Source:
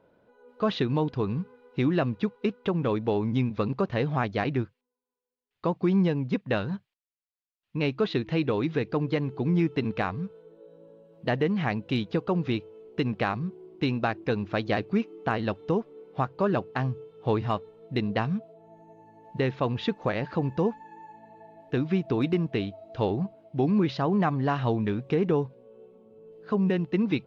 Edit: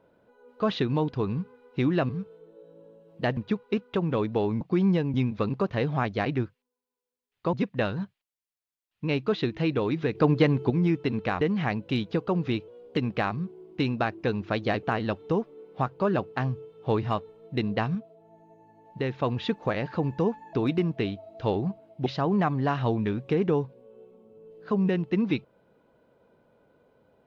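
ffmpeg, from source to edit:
-filter_complex "[0:a]asplit=16[a][b][c][d][e][f][g][h][i][j][k][l][m][n][o][p];[a]atrim=end=2.092[q];[b]atrim=start=10.128:end=11.412[r];[c]atrim=start=2.088:end=3.332[s];[d]atrim=start=5.718:end=6.252[t];[e]atrim=start=3.328:end=5.722[u];[f]atrim=start=6.248:end=8.872[v];[g]atrim=start=8.868:end=9.422,asetpts=PTS-STARTPTS,volume=6dB[w];[h]atrim=start=9.418:end=10.132[x];[i]atrim=start=11.408:end=12.684[y];[j]atrim=start=12.68:end=13,asetpts=PTS-STARTPTS,asetrate=48510,aresample=44100,atrim=end_sample=12829,asetpts=PTS-STARTPTS[z];[k]atrim=start=12.996:end=14.862[aa];[l]atrim=start=15.218:end=18.342[ab];[m]atrim=start=18.338:end=19.582,asetpts=PTS-STARTPTS,volume=-3dB[ac];[n]atrim=start=19.578:end=20.922[ad];[o]atrim=start=22.078:end=23.612[ae];[p]atrim=start=23.868[af];[q][r]acrossfade=d=0.004:c1=hsin:c2=hsin[ag];[ag][s]acrossfade=d=0.004:c1=hsin:c2=hsin[ah];[ah][t]acrossfade=d=0.004:c1=hsin:c2=hsin[ai];[ai][u]acrossfade=d=0.004:c1=hsin:c2=hsin[aj];[aj][v]acrossfade=d=0.004:c1=hsin:c2=hsin[ak];[ak][w]acrossfade=d=0.004:c1=hsin:c2=hsin[al];[al][x]acrossfade=d=0.004:c1=hsin:c2=hsin[am];[am][y]acrossfade=d=0.004:c1=hsin:c2=hsin[an];[an][z]acrossfade=d=0.004:c1=hsin:c2=hsin[ao];[ao][aa]acrossfade=d=0.004:c1=hsin:c2=hsin[ap];[ap][ab]acrossfade=d=0.004:c1=hsin:c2=hsin[aq];[aq][ac]acrossfade=d=0.004:c1=hsin:c2=hsin[ar];[ar][ad]acrossfade=d=0.004:c1=hsin:c2=hsin[as];[as][ae]acrossfade=d=0.004:c1=hsin:c2=hsin[at];[at][af]acrossfade=d=0.004:c1=hsin:c2=hsin"

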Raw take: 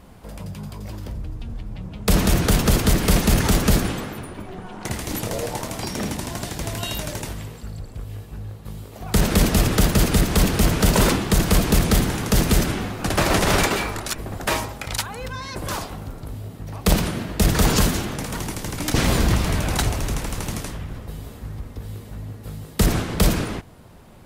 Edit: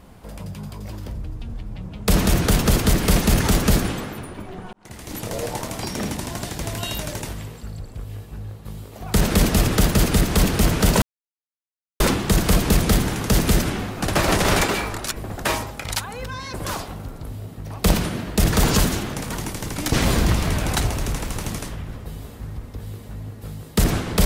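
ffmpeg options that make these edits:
-filter_complex "[0:a]asplit=3[a][b][c];[a]atrim=end=4.73,asetpts=PTS-STARTPTS,afade=t=out:st=4.726:d=0.004:c=hsin[d];[b]atrim=start=4.73:end=11.02,asetpts=PTS-STARTPTS,afade=t=in:d=0.72,afade=t=out:st=6.286:d=0.004:c=hsin,apad=pad_dur=0.98[e];[c]atrim=start=11.02,asetpts=PTS-STARTPTS,afade=t=in:d=0.004:c=hsin[f];[d][e][f]concat=n=3:v=0:a=1"

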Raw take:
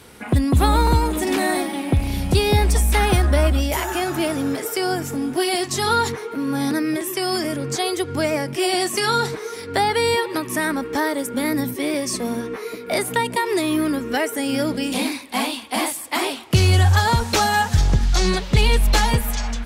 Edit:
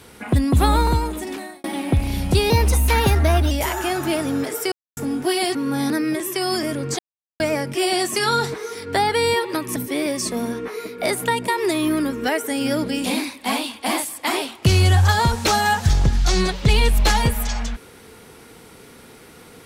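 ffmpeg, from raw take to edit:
-filter_complex "[0:a]asplit=10[a][b][c][d][e][f][g][h][i][j];[a]atrim=end=1.64,asetpts=PTS-STARTPTS,afade=t=out:st=0.72:d=0.92[k];[b]atrim=start=1.64:end=2.504,asetpts=PTS-STARTPTS,afade=t=in:d=0.004:c=hsin[l];[c]atrim=start=2.5:end=3.62,asetpts=PTS-STARTPTS,asetrate=48951,aresample=44100,atrim=end_sample=44497,asetpts=PTS-STARTPTS[m];[d]atrim=start=3.616:end=4.83,asetpts=PTS-STARTPTS,afade=t=out:st=1.21:d=0.004:c=hsin[n];[e]atrim=start=4.83:end=5.08,asetpts=PTS-STARTPTS,volume=0[o];[f]atrim=start=5.08:end=5.662,asetpts=PTS-STARTPTS,afade=t=in:d=0.004:c=hsin[p];[g]atrim=start=6.358:end=7.8,asetpts=PTS-STARTPTS,afade=t=out:st=1.438:d=0.004:c=hsin[q];[h]atrim=start=7.8:end=8.21,asetpts=PTS-STARTPTS,volume=0[r];[i]atrim=start=8.21:end=10.572,asetpts=PTS-STARTPTS,afade=t=in:d=0.004:c=hsin[s];[j]atrim=start=11.638[t];[k][l]concat=n=2:v=0:a=1[u];[u][m]acrossfade=d=0.004:c1=hsin:c2=hsin[v];[n][o][p]concat=n=3:v=0:a=1[w];[v][w]acrossfade=d=0.004:c1=hsin:c2=hsin[x];[q][r][s]concat=n=3:v=0:a=1[y];[x][y]acrossfade=d=0.004:c1=hsin:c2=hsin[z];[z][t]acrossfade=d=0.004:c1=hsin:c2=hsin"

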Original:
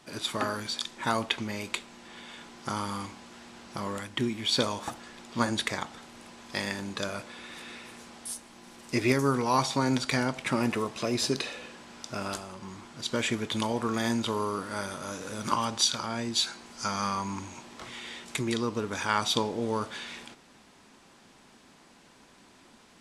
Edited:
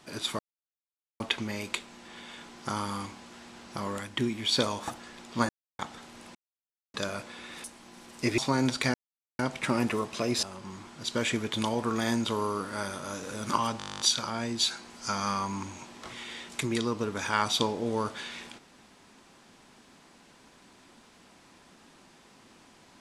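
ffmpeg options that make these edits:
-filter_complex "[0:a]asplit=22[a][b][c][d][e][f][g][h][i][j][k][l][m][n][o][p][q][r][s][t][u][v];[a]atrim=end=0.39,asetpts=PTS-STARTPTS,afade=t=out:st=0.386:d=0.004:c=hsin[w];[b]atrim=start=0.39:end=1.2,asetpts=PTS-STARTPTS,volume=0[x];[c]atrim=start=1.2:end=5.49,asetpts=PTS-STARTPTS,afade=t=in:d=0.004:c=hsin,afade=t=out:st=4.286:d=0.004:c=hsin[y];[d]atrim=start=5.49:end=5.79,asetpts=PTS-STARTPTS,volume=0[z];[e]atrim=start=5.79:end=6.35,asetpts=PTS-STARTPTS,afade=t=in:d=0.004:c=hsin,afade=t=out:st=0.556:d=0.004:c=hsin[aa];[f]atrim=start=6.35:end=6.94,asetpts=PTS-STARTPTS,volume=0[ab];[g]atrim=start=6.94:end=7.642,asetpts=PTS-STARTPTS,afade=t=in:d=0.004:c=hsin[ac];[h]atrim=start=8.338:end=9.082[ad];[i]atrim=start=9.658:end=10.22,asetpts=PTS-STARTPTS,afade=t=out:st=0.558:d=0.004:c=hsin,apad=pad_dur=0.45[ae];[j]atrim=start=10.22:end=11.262,asetpts=PTS-STARTPTS,afade=t=in:d=0.004:c=hsin[af];[k]atrim=start=12.408:end=15.782[ag];[l]atrim=start=15.758:end=15.782[ah];[m]atrim=start=15.758:end=15.782[ai];[n]atrim=start=15.758:end=15.782[aj];[o]atrim=start=15.758:end=15.782[ak];[p]atrim=start=15.758:end=15.782[al];[q]atrim=start=15.758:end=15.782[am];[r]atrim=start=15.758:end=15.782[an];[s]atrim=start=15.758:end=15.782[ao];[t]atrim=start=15.758:end=15.782[ap];[u]atrim=start=15.758:end=15.782[aq];[v]atrim=start=15.758[ar];[w][x][y][z][aa][ab][ac]concat=n=7:v=0:a=1[as];[as][ad]acrossfade=d=0.004:c1=hsin:c2=hsin[at];[ae][af]concat=n=2:v=0:a=1[au];[at][au]acrossfade=d=0.004:c1=hsin:c2=hsin[av];[av][ag]acrossfade=d=0.004:c1=hsin:c2=hsin[aw];[aw][ah]acrossfade=d=0.004:c1=hsin:c2=hsin[ax];[ax][ai]acrossfade=d=0.004:c1=hsin:c2=hsin[ay];[ay][aj]acrossfade=d=0.004:c1=hsin:c2=hsin[az];[az][ak]acrossfade=d=0.004:c1=hsin:c2=hsin[ba];[ba][al]acrossfade=d=0.004:c1=hsin:c2=hsin[bb];[bb][am]acrossfade=d=0.004:c1=hsin:c2=hsin[bc];[bc][an]acrossfade=d=0.004:c1=hsin:c2=hsin[bd];[bd][ao]acrossfade=d=0.004:c1=hsin:c2=hsin[be];[be][ap]acrossfade=d=0.004:c1=hsin:c2=hsin[bf];[bf][aq]acrossfade=d=0.004:c1=hsin:c2=hsin[bg];[bg][ar]acrossfade=d=0.004:c1=hsin:c2=hsin"

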